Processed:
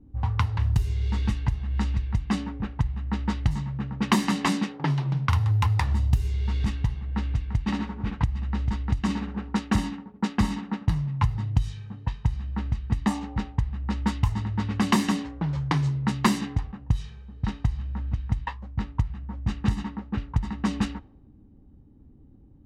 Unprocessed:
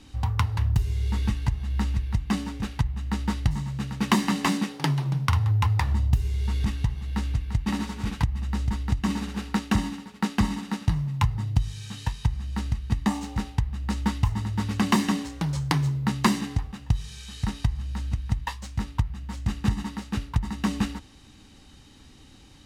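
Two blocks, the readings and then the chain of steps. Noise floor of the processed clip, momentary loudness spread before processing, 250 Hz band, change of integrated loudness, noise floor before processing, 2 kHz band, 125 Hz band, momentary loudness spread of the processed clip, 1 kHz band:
-52 dBFS, 8 LU, 0.0 dB, 0.0 dB, -51 dBFS, -1.0 dB, 0.0 dB, 8 LU, 0.0 dB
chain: level-controlled noise filter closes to 320 Hz, open at -18.5 dBFS

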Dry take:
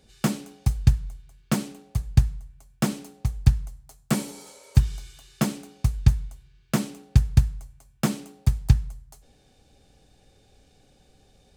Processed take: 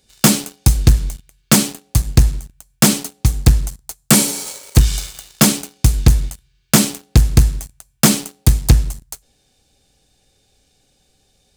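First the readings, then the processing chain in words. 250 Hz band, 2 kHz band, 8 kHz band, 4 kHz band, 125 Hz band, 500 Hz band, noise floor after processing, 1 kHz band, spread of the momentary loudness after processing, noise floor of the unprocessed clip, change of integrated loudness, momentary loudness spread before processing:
+10.5 dB, +13.5 dB, +20.5 dB, +18.0 dB, +7.0 dB, +11.5 dB, -62 dBFS, +11.5 dB, 13 LU, -60 dBFS, +10.0 dB, 15 LU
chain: treble shelf 2.7 kHz +11.5 dB; waveshaping leveller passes 3; trim +1.5 dB

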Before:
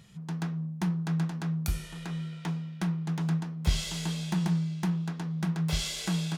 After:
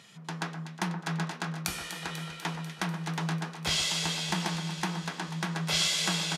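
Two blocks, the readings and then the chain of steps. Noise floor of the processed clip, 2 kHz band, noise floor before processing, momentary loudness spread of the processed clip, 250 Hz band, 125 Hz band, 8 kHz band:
-47 dBFS, +8.5 dB, -42 dBFS, 10 LU, -5.0 dB, -5.5 dB, +6.5 dB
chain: frequency weighting A; echo whose repeats swap between lows and highs 123 ms, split 1.8 kHz, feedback 84%, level -9 dB; resampled via 32 kHz; trim +6.5 dB

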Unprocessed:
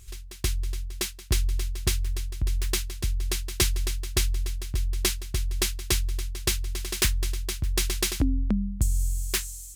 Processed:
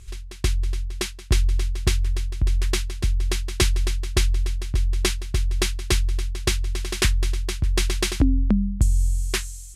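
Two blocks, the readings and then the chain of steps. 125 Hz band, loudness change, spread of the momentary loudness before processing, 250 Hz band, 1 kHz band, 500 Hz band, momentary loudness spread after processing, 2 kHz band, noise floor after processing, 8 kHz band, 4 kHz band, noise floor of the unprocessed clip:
+5.5 dB, +4.0 dB, 6 LU, +5.5 dB, +5.0 dB, +5.5 dB, 5 LU, +4.0 dB, -38 dBFS, -0.5 dB, +2.0 dB, -42 dBFS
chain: low-pass 12 kHz 24 dB/octave; treble shelf 4.5 kHz -8 dB; trim +5.5 dB

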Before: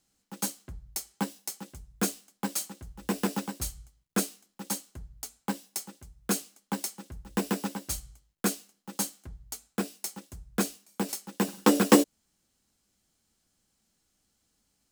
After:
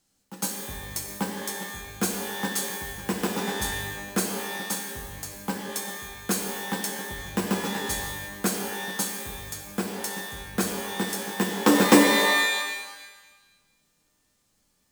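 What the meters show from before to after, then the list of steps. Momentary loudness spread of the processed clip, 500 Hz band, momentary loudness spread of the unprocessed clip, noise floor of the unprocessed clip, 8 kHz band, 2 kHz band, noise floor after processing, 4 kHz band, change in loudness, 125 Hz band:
14 LU, +4.5 dB, 16 LU, -76 dBFS, +4.0 dB, +12.0 dB, -70 dBFS, +9.0 dB, +4.5 dB, +3.5 dB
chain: pitch-shifted reverb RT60 1.2 s, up +12 st, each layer -2 dB, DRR 3 dB; trim +1.5 dB

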